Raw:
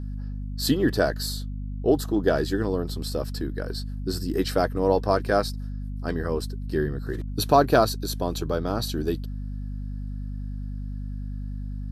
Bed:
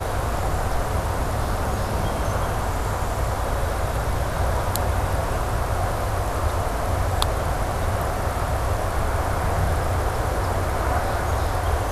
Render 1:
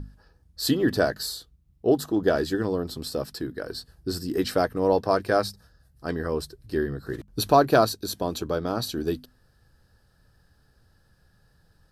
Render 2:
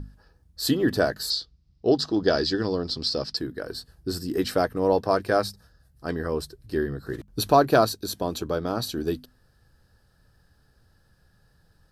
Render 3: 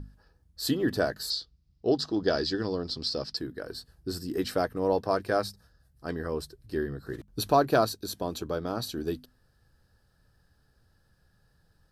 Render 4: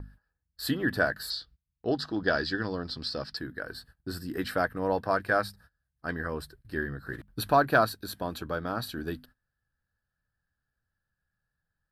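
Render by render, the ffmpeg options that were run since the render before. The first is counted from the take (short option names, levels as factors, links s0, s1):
-af "bandreject=f=50:t=h:w=6,bandreject=f=100:t=h:w=6,bandreject=f=150:t=h:w=6,bandreject=f=200:t=h:w=6,bandreject=f=250:t=h:w=6"
-filter_complex "[0:a]asettb=1/sr,asplit=3[s0][s1][s2];[s0]atrim=end=1.304[s3];[s1]atrim=start=1.3:end=3.37,asetpts=PTS-STARTPTS,afade=t=in:d=0.004:c=qsin,afade=t=out:st=2.066:d=0.004:c=qsin,lowpass=f=4900:t=q:w=4.9[s4];[s2]atrim=start=3.366[s5];[s3][s4]acrossfade=d=0.004:c1=hsin:c2=qsin[s6];[s6][s5]acrossfade=d=0.004:c1=qsin:c2=hsin"
-af "volume=0.596"
-af "equalizer=f=400:t=o:w=0.67:g=-6,equalizer=f=1600:t=o:w=0.67:g=9,equalizer=f=6300:t=o:w=0.67:g=-10,agate=range=0.112:threshold=0.00224:ratio=16:detection=peak"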